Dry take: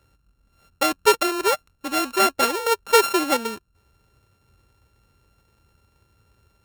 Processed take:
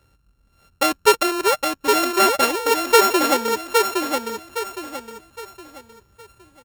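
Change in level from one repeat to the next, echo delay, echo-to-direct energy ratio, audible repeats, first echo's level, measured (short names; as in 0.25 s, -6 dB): -9.5 dB, 0.814 s, -3.5 dB, 4, -4.0 dB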